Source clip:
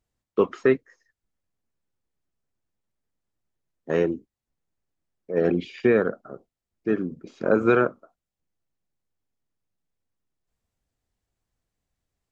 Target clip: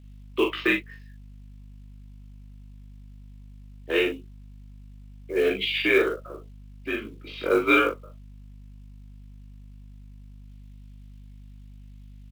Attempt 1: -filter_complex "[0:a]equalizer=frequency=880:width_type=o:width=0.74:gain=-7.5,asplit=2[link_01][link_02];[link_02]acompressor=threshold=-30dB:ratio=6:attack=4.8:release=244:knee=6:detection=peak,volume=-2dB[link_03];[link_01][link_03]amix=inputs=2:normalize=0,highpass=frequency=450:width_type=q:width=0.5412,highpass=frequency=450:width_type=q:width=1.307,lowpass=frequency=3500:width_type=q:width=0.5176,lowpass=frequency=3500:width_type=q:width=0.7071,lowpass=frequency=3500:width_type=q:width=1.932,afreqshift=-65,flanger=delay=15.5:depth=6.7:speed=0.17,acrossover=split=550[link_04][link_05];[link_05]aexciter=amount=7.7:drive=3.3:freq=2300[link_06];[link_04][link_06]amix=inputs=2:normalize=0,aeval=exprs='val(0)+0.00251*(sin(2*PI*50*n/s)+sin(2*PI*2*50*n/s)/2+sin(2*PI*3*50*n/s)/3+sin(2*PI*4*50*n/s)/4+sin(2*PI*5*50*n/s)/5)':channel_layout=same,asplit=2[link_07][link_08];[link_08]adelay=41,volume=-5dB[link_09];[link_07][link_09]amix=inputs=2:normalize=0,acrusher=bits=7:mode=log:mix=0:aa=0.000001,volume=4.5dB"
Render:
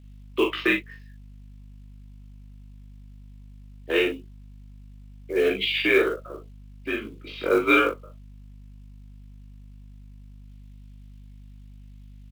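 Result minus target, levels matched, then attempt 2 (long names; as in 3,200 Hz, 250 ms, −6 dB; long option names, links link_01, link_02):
downward compressor: peak gain reduction −7.5 dB
-filter_complex "[0:a]equalizer=frequency=880:width_type=o:width=0.74:gain=-7.5,asplit=2[link_01][link_02];[link_02]acompressor=threshold=-39dB:ratio=6:attack=4.8:release=244:knee=6:detection=peak,volume=-2dB[link_03];[link_01][link_03]amix=inputs=2:normalize=0,highpass=frequency=450:width_type=q:width=0.5412,highpass=frequency=450:width_type=q:width=1.307,lowpass=frequency=3500:width_type=q:width=0.5176,lowpass=frequency=3500:width_type=q:width=0.7071,lowpass=frequency=3500:width_type=q:width=1.932,afreqshift=-65,flanger=delay=15.5:depth=6.7:speed=0.17,acrossover=split=550[link_04][link_05];[link_05]aexciter=amount=7.7:drive=3.3:freq=2300[link_06];[link_04][link_06]amix=inputs=2:normalize=0,aeval=exprs='val(0)+0.00251*(sin(2*PI*50*n/s)+sin(2*PI*2*50*n/s)/2+sin(2*PI*3*50*n/s)/3+sin(2*PI*4*50*n/s)/4+sin(2*PI*5*50*n/s)/5)':channel_layout=same,asplit=2[link_07][link_08];[link_08]adelay=41,volume=-5dB[link_09];[link_07][link_09]amix=inputs=2:normalize=0,acrusher=bits=7:mode=log:mix=0:aa=0.000001,volume=4.5dB"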